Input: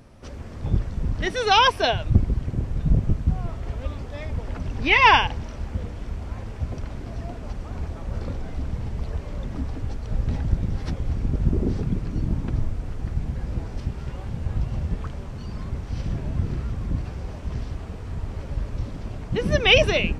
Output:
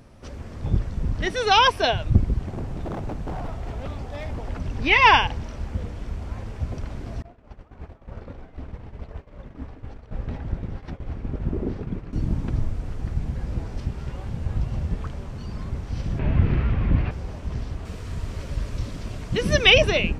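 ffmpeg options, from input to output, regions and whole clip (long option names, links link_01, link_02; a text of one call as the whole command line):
ffmpeg -i in.wav -filter_complex "[0:a]asettb=1/sr,asplit=3[link_01][link_02][link_03];[link_01]atrim=end=2.404[link_04];[link_02]atrim=start=2.4:end=4.49,asetpts=PTS-STARTPTS,afade=type=in:duration=0.004:curve=qsin,afade=type=out:start_time=2.086:duration=0.004:curve=qsin,equalizer=frequency=760:width_type=o:width=0.4:gain=7,aeval=exprs='0.0596*(abs(mod(val(0)/0.0596+3,4)-2)-1)':channel_layout=same[link_05];[link_03]atrim=start=4.486[link_06];[link_04][link_05]acrossfade=duration=0.004:curve1=hsin:curve2=qsin[link_07];[link_07][link_06]acrossfade=duration=0.004:curve1=qsin:curve2=hsin,asettb=1/sr,asplit=3[link_08][link_09][link_10];[link_08]atrim=end=7.224[link_11];[link_09]atrim=start=7.22:end=12.13,asetpts=PTS-STARTPTS,afade=type=in:duration=0.004:curve=qsin,afade=type=out:start_time=4.906:duration=0.004:curve=qsin,agate=range=-33dB:threshold=-24dB:ratio=3:release=100:detection=peak,bass=frequency=250:gain=-6,treble=frequency=4000:gain=-13[link_12];[link_10]atrim=start=12.126[link_13];[link_11][link_12]acrossfade=duration=0.004:curve1=hsin:curve2=qsin[link_14];[link_14][link_13]acrossfade=duration=0.004:curve1=qsin:curve2=hsin,asettb=1/sr,asplit=3[link_15][link_16][link_17];[link_15]atrim=end=16.194[link_18];[link_16]atrim=start=16.19:end=17.11,asetpts=PTS-STARTPTS,afade=type=in:duration=0.004:curve=qsin,afade=type=out:start_time=0.916:duration=0.004:curve=qsin,lowpass=frequency=2500:width_type=q:width=1.9,acontrast=58[link_19];[link_17]atrim=start=17.106[link_20];[link_18][link_19]acrossfade=duration=0.004:curve1=hsin:curve2=qsin[link_21];[link_21][link_20]acrossfade=duration=0.004:curve1=qsin:curve2=hsin,asettb=1/sr,asplit=3[link_22][link_23][link_24];[link_22]atrim=end=17.854[link_25];[link_23]atrim=start=17.85:end=19.7,asetpts=PTS-STARTPTS,afade=type=in:duration=0.004:curve=qsin,afade=type=out:start_time=1.846:duration=0.004:curve=qsin,highshelf=frequency=2300:gain=9,bandreject=frequency=820:width=9.3[link_26];[link_24]atrim=start=19.696[link_27];[link_25][link_26]acrossfade=duration=0.004:curve1=hsin:curve2=qsin[link_28];[link_28][link_27]acrossfade=duration=0.004:curve1=qsin:curve2=hsin" out.wav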